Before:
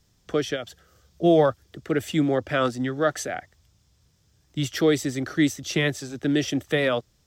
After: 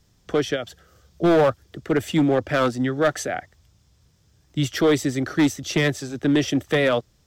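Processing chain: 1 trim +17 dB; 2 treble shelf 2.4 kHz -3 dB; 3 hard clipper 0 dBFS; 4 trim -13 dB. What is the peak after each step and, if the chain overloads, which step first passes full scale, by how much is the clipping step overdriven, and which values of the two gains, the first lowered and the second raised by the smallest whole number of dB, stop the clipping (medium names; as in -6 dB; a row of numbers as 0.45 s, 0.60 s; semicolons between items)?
+9.0 dBFS, +9.0 dBFS, 0.0 dBFS, -13.0 dBFS; step 1, 9.0 dB; step 1 +8 dB, step 4 -4 dB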